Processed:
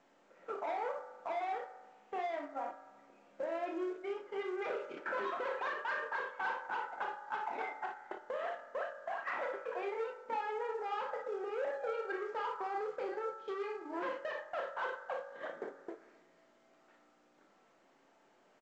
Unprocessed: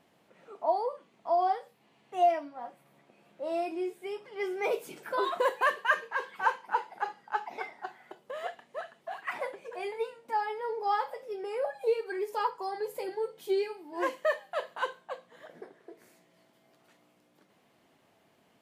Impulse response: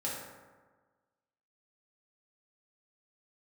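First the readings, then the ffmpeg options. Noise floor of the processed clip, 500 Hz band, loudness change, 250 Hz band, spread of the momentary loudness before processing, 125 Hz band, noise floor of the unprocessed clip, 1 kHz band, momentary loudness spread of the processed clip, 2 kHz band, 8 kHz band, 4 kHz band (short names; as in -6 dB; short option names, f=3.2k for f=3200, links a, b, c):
-68 dBFS, -6.5 dB, -7.0 dB, -5.5 dB, 15 LU, n/a, -67 dBFS, -7.0 dB, 7 LU, -5.5 dB, under -10 dB, -8.5 dB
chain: -filter_complex "[0:a]aeval=exprs='(tanh(56.2*val(0)+0.1)-tanh(0.1))/56.2':c=same,acompressor=threshold=-52dB:ratio=6,highpass=280,lowpass=2.3k,aecho=1:1:33|58:0.447|0.447,agate=range=-16dB:threshold=-55dB:ratio=16:detection=peak,asplit=2[a][b];[b]equalizer=f=1.4k:w=2:g=13[c];[1:a]atrim=start_sample=2205[d];[c][d]afir=irnorm=-1:irlink=0,volume=-14dB[e];[a][e]amix=inputs=2:normalize=0,volume=11.5dB" -ar 16000 -c:a pcm_mulaw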